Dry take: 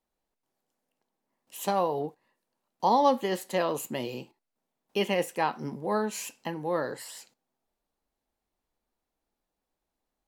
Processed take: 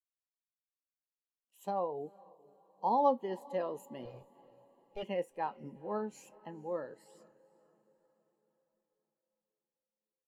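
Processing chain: 4.05–5.03 minimum comb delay 1.7 ms; diffused feedback echo 0.455 s, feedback 61%, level -15 dB; spectral expander 1.5:1; gain -5 dB

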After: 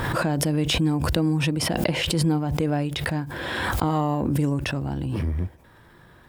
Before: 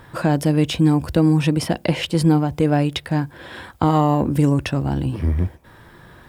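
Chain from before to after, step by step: backwards sustainer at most 23 dB/s; gain -7 dB

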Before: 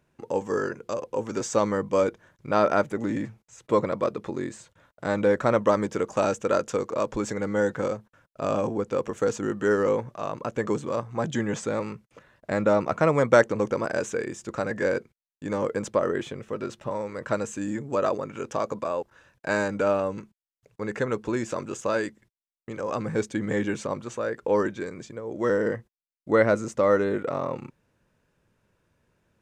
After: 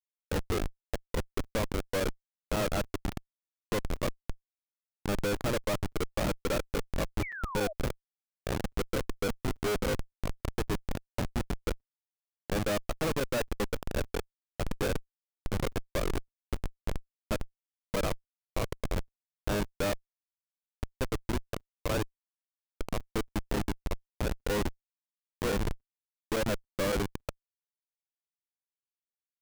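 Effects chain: reverb removal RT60 0.96 s; LPF 4200 Hz 24 dB/oct; Schmitt trigger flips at -23 dBFS; painted sound fall, 7.22–7.73, 590–2400 Hz -40 dBFS; crackling interface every 0.28 s, samples 256, zero, from 0.88

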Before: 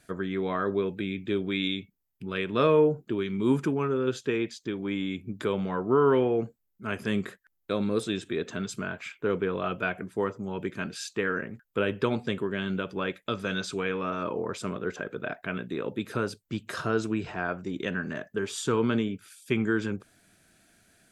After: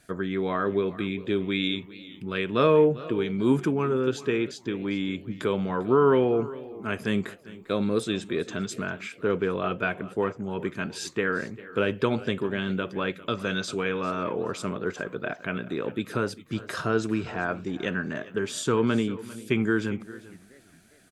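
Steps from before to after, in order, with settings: 9.66–10.49 high shelf 10000 Hz -7 dB; on a send: echo 0.398 s -18.5 dB; on the sum: warbling echo 0.408 s, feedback 43%, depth 220 cents, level -23.5 dB; gain +2 dB

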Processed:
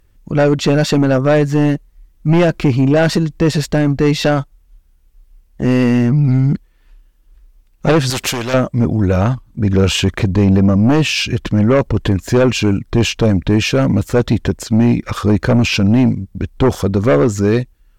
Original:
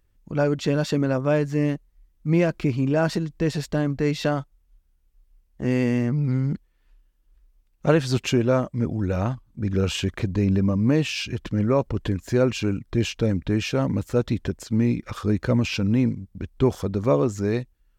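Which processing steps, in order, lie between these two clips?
in parallel at -5.5 dB: sine folder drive 11 dB, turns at -5 dBFS; 8.1–8.54 on the sum: spectral compressor 2:1

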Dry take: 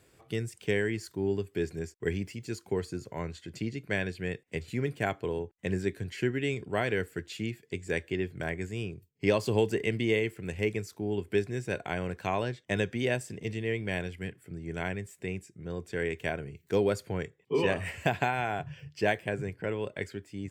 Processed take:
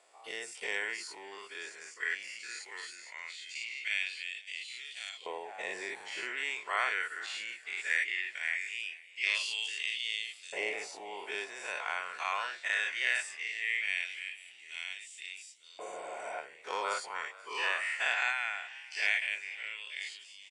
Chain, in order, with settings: spectral dilation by 0.12 s; HPF 140 Hz 6 dB/oct; low shelf 460 Hz -3 dB; notch 1600 Hz, Q 8.5; frequency-shifting echo 0.481 s, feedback 57%, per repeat +64 Hz, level -20 dB; spectral repair 15.82–16.35, 270–5800 Hz both; LFO high-pass saw up 0.19 Hz 720–4000 Hz; gain -4.5 dB; AAC 64 kbps 22050 Hz

